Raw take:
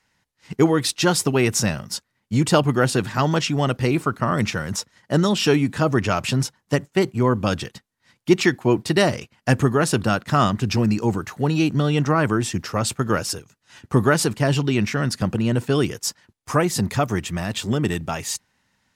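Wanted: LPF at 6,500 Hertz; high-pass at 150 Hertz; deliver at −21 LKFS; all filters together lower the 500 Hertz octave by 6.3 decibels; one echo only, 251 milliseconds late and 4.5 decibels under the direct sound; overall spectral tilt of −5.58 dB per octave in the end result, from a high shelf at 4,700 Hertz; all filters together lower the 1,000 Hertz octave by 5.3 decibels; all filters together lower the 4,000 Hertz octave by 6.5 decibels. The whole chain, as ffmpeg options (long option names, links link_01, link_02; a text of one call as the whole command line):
ffmpeg -i in.wav -af "highpass=150,lowpass=6500,equalizer=frequency=500:width_type=o:gain=-7.5,equalizer=frequency=1000:width_type=o:gain=-4.5,equalizer=frequency=4000:width_type=o:gain=-5.5,highshelf=frequency=4700:gain=-4.5,aecho=1:1:251:0.596,volume=3.5dB" out.wav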